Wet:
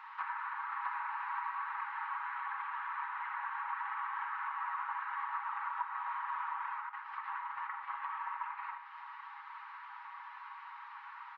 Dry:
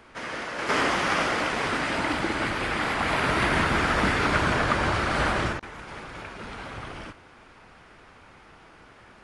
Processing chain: brick-wall FIR high-pass 1000 Hz; gate -42 dBFS, range -8 dB; comb 5.1 ms, depth 43%; compressor 8:1, threshold -50 dBFS, peak gain reduction 29.5 dB; wide varispeed 0.812×; shoebox room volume 2000 m³, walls furnished, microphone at 1.1 m; treble ducked by the level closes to 2000 Hz, closed at -49.5 dBFS; tape spacing loss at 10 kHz 44 dB; gain +18 dB

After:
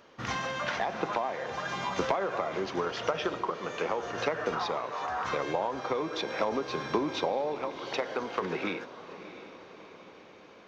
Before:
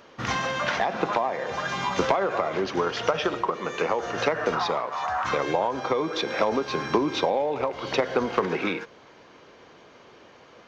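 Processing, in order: 7.55–8.42 low shelf 330 Hz -9.5 dB; diffused feedback echo 0.673 s, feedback 56%, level -14 dB; gain -6 dB

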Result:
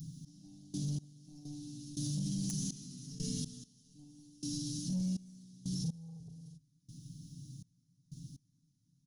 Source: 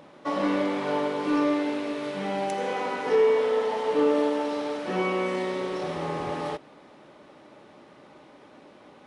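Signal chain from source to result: elliptic band-stop 160–6300 Hz, stop band 50 dB; bell 730 Hz -14 dB 1.3 oct; comb 7.1 ms, depth 75%; soft clip -36.5 dBFS, distortion -16 dB; notches 50/100/150/200 Hz; step gate "x..x....xx" 61 bpm -24 dB; thirty-one-band EQ 500 Hz -8 dB, 800 Hz +5 dB, 8000 Hz -12 dB; limiter -45.5 dBFS, peak gain reduction 10 dB; 1.45–3.64 fast leveller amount 50%; gain +16 dB

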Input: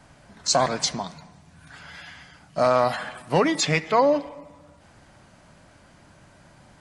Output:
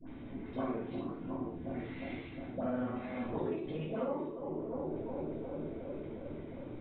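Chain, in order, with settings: local time reversal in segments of 42 ms; EQ curve 180 Hz 0 dB, 260 Hz +11 dB, 620 Hz -12 dB; analogue delay 0.358 s, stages 2048, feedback 70%, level -16.5 dB; formant shift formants +4 st; compressor 12:1, threshold -38 dBFS, peak gain reduction 22.5 dB; Chebyshev low-pass 3800 Hz, order 8; dispersion highs, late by 72 ms, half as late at 990 Hz; reverb RT60 0.40 s, pre-delay 6 ms, DRR -6 dB; mismatched tape noise reduction encoder only; gain -5 dB

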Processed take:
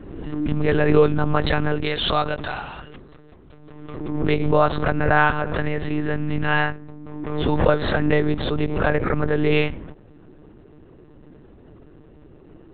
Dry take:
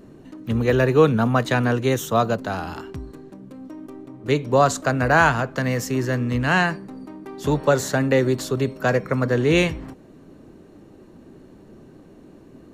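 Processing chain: 1.85–4 tilt +3.5 dB/oct; monotone LPC vocoder at 8 kHz 150 Hz; backwards sustainer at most 41 dB/s; gain -1 dB

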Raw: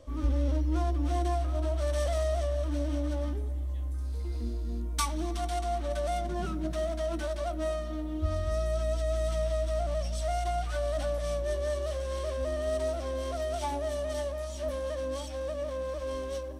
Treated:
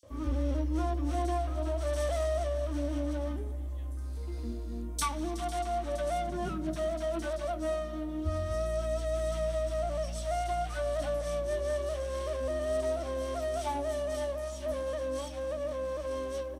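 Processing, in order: HPF 71 Hz; bands offset in time highs, lows 30 ms, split 4300 Hz

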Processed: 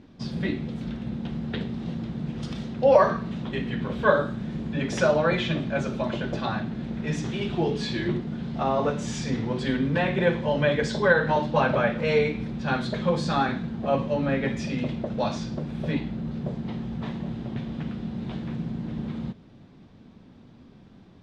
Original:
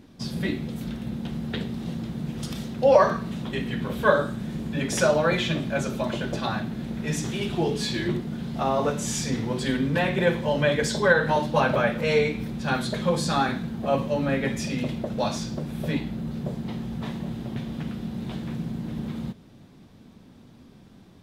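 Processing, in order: air absorption 120 m

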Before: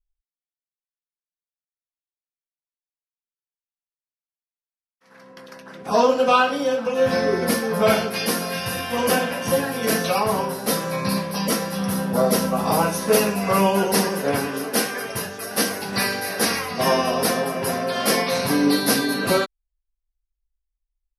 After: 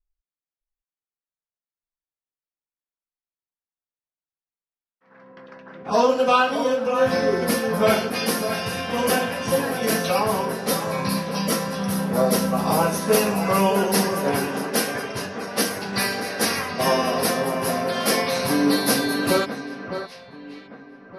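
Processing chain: echo with dull and thin repeats by turns 0.61 s, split 2000 Hz, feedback 53%, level -9 dB; low-pass opened by the level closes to 1800 Hz, open at -19 dBFS; gain -1 dB

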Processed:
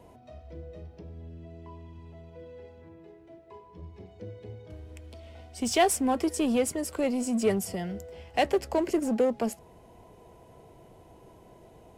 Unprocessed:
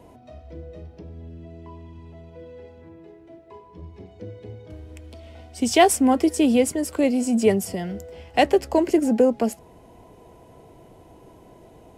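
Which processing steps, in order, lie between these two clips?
bell 280 Hz -4.5 dB 0.4 oct; in parallel at -3 dB: overloaded stage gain 23 dB; on the sum: gain -8.5 dB

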